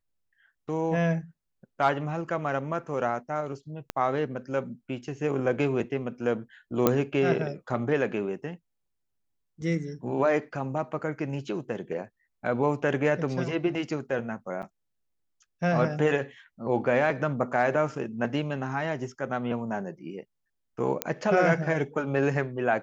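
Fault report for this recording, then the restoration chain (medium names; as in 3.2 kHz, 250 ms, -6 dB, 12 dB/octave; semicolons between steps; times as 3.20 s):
3.90 s: pop -15 dBFS
6.87 s: pop -7 dBFS
14.62–14.63 s: dropout 8.1 ms
21.02 s: pop -8 dBFS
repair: de-click; interpolate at 14.62 s, 8.1 ms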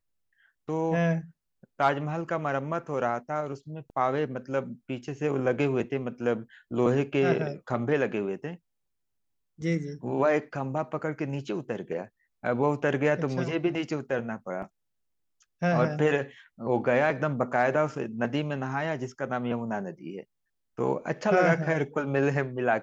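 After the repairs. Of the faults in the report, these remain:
3.90 s: pop
21.02 s: pop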